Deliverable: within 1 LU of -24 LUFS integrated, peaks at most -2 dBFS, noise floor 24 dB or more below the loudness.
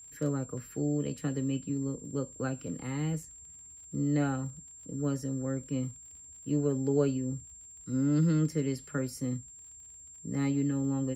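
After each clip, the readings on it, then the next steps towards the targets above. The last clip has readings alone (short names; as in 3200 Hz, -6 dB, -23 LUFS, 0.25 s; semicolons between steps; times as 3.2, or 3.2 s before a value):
ticks 52/s; steady tone 7400 Hz; tone level -48 dBFS; loudness -32.5 LUFS; peak -15.0 dBFS; loudness target -24.0 LUFS
-> de-click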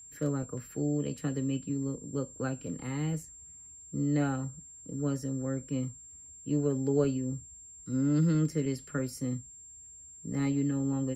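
ticks 0.54/s; steady tone 7400 Hz; tone level -48 dBFS
-> notch 7400 Hz, Q 30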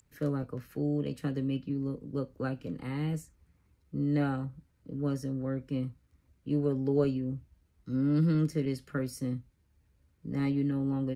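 steady tone none; loudness -32.5 LUFS; peak -14.5 dBFS; loudness target -24.0 LUFS
-> gain +8.5 dB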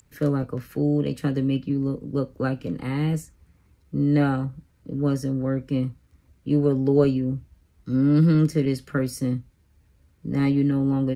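loudness -24.0 LUFS; peak -6.0 dBFS; noise floor -62 dBFS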